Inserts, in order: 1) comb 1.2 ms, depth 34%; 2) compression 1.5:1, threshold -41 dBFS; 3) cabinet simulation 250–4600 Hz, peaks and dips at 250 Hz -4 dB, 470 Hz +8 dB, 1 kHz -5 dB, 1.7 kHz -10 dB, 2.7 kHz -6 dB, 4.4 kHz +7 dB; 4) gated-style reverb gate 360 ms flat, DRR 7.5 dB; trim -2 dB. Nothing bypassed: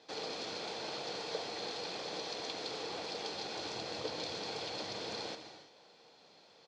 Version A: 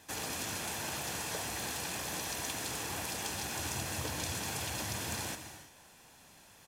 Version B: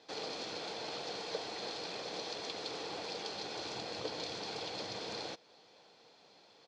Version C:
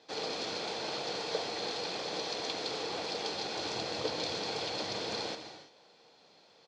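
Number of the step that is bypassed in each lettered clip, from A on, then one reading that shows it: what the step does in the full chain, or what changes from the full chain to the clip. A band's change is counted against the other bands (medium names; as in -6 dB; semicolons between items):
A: 3, 8 kHz band +11.0 dB; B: 4, momentary loudness spread change -1 LU; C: 2, mean gain reduction 3.5 dB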